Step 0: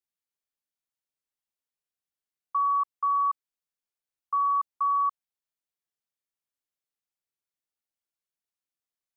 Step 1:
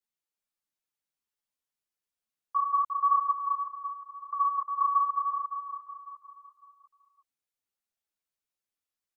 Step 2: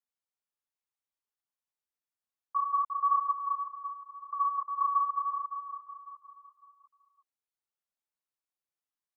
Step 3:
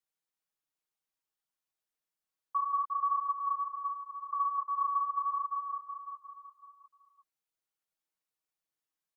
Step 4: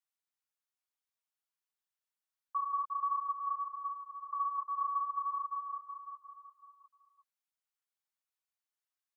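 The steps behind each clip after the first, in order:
on a send: repeating echo 353 ms, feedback 45%, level −5 dB; on the sum: string-ensemble chorus; level +2 dB
parametric band 1,000 Hz +6 dB 1.4 octaves; level −8 dB
comb filter 6.3 ms, depth 62%; downward compressor 3 to 1, threshold −30 dBFS, peak gain reduction 8.5 dB
Chebyshev high-pass filter 960 Hz, order 2; level −3 dB

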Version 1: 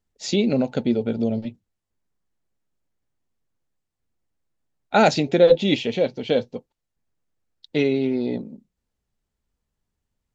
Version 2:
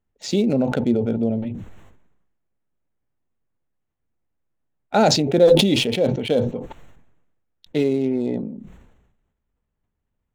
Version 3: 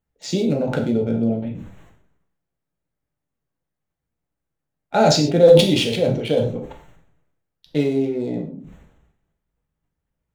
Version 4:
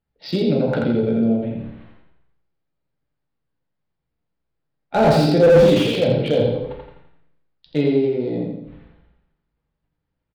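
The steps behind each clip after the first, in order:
adaptive Wiener filter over 9 samples; dynamic equaliser 2,200 Hz, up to −8 dB, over −37 dBFS, Q 0.84; level that may fall only so fast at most 52 dB per second; level +1 dB
reverb whose tail is shaped and stops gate 160 ms falling, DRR 1.5 dB; level −2 dB
on a send: repeating echo 84 ms, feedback 43%, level −4 dB; on the sum: downsampling to 11,025 Hz; slew-rate limiting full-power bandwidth 180 Hz

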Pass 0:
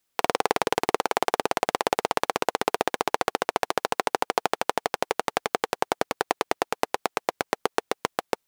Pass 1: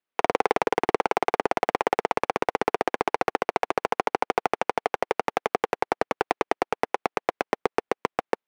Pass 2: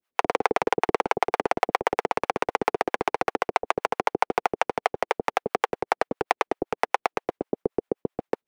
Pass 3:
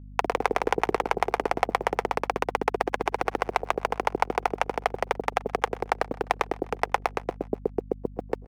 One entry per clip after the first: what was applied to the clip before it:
three-way crossover with the lows and the highs turned down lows −13 dB, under 190 Hz, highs −18 dB, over 3,200 Hz; leveller curve on the samples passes 2; level −3 dB
in parallel at +2.5 dB: brickwall limiter −18 dBFS, peak gain reduction 9.5 dB; on the sum: two-band tremolo in antiphase 7.7 Hz, depth 100%, crossover 500 Hz; level +1.5 dB
bit-depth reduction 10 bits, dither none; repeating echo 127 ms, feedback 60%, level −22 dB; mains hum 50 Hz, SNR 15 dB; level −1.5 dB

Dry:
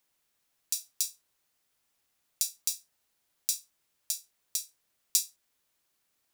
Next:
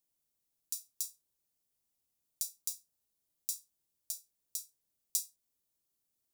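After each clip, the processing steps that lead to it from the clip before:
parametric band 1,700 Hz −14 dB 2.7 octaves
level −4.5 dB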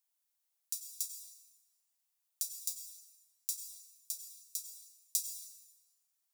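inverse Chebyshev high-pass filter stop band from 210 Hz, stop band 60 dB
dense smooth reverb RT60 1.5 s, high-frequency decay 0.75×, pre-delay 80 ms, DRR 7 dB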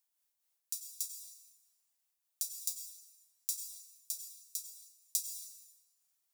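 amplitude modulation by smooth noise, depth 50%
level +3 dB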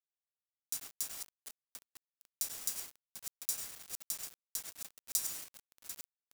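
feedback delay that plays each chunk backwards 372 ms, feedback 60%, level −8.5 dB
bit reduction 7 bits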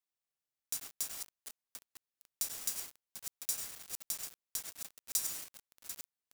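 gain into a clipping stage and back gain 19.5 dB
level +1 dB

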